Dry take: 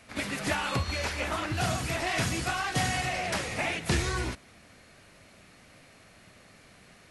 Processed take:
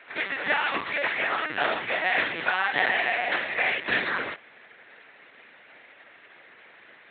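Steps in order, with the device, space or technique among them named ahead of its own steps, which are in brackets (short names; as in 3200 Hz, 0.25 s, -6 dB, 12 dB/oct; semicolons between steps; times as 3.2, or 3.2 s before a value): talking toy (LPC vocoder at 8 kHz pitch kept; HPF 380 Hz 12 dB/oct; bell 1800 Hz +8 dB 0.55 oct); gain +3.5 dB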